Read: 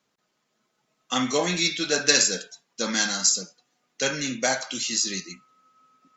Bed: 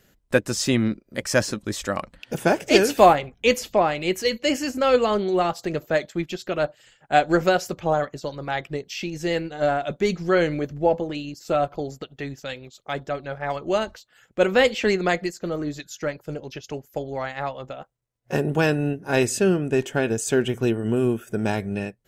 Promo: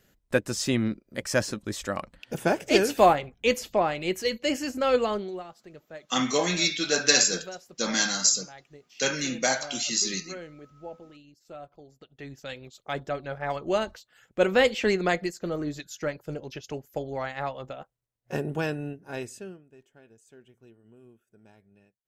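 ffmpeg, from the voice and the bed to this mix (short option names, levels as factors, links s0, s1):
-filter_complex "[0:a]adelay=5000,volume=0.891[s0];[1:a]volume=4.73,afade=t=out:st=5.02:d=0.42:silence=0.149624,afade=t=in:st=11.95:d=0.75:silence=0.125893,afade=t=out:st=17.66:d=1.98:silence=0.0334965[s1];[s0][s1]amix=inputs=2:normalize=0"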